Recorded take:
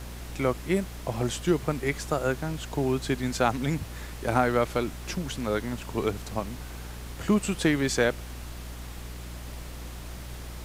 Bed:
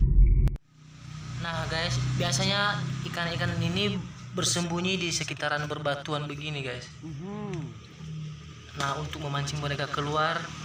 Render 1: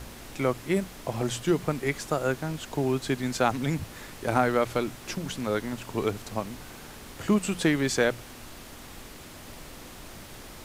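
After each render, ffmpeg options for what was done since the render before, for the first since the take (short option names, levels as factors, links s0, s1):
-af "bandreject=f=60:t=h:w=4,bandreject=f=120:t=h:w=4,bandreject=f=180:t=h:w=4"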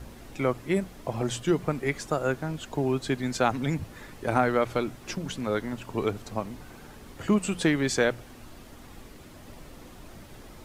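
-af "afftdn=nr=8:nf=-45"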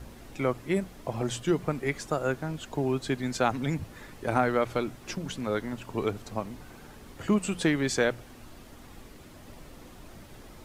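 -af "volume=0.841"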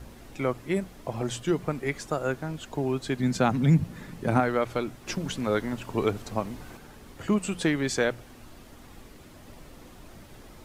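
-filter_complex "[0:a]asettb=1/sr,asplit=3[s0][s1][s2];[s0]atrim=end=3.194[s3];[s1]atrim=start=3.19:end=4.4,asetpts=PTS-STARTPTS,afade=t=in:d=0.004:c=qsin,afade=t=out:st=1.206:d=0.004:c=qsin,equalizer=f=170:t=o:w=1.1:g=13[s4];[s2]atrim=start=4.396[s5];[s3][s4]acrossfade=d=0.004:c1=hsin:c2=qsin[s6];[s6][s5]acrossfade=d=0.004:c1=qsin:c2=hsin,asplit=3[s7][s8][s9];[s7]atrim=end=5.072[s10];[s8]atrim=start=5.068:end=6.772,asetpts=PTS-STARTPTS,volume=1.5[s11];[s9]atrim=start=6.768[s12];[s10][s11]acrossfade=d=0.004:c1=hsin:c2=hsin[s13];[s13][s12]acrossfade=d=0.004:c1=hsin:c2=hsin"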